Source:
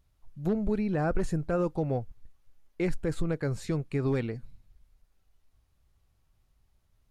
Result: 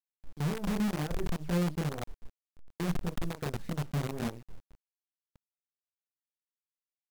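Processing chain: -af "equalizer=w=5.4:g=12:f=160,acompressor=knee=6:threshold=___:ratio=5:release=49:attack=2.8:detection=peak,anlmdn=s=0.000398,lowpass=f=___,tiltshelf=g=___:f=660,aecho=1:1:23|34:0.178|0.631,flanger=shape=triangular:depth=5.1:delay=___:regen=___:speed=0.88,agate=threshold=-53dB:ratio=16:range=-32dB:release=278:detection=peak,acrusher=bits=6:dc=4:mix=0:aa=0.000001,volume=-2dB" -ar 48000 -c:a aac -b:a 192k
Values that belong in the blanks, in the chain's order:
-30dB, 2600, 5, 1.8, 33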